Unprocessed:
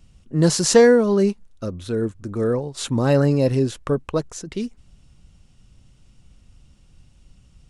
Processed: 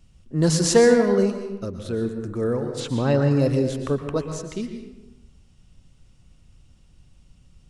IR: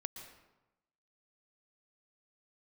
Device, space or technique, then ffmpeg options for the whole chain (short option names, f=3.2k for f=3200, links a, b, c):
bathroom: -filter_complex "[0:a]asettb=1/sr,asplit=3[a][b][c];[a]atrim=end=2.804[d];[b]atrim=start=2.8:end=3.31,asetpts=PTS-STARTPTS,afade=t=in:d=0.004:c=qsin,afade=t=out:st=0.506:d=0.004:c=qsin,lowpass=5.5k[e];[c]atrim=start=3.306[f];[d][e]acrossfade=d=0.004:c1=hsin:c2=qsin[g];[g][f]acrossfade=d=0.004:c1=qsin:c2=hsin[h];[1:a]atrim=start_sample=2205[i];[h][i]afir=irnorm=-1:irlink=0"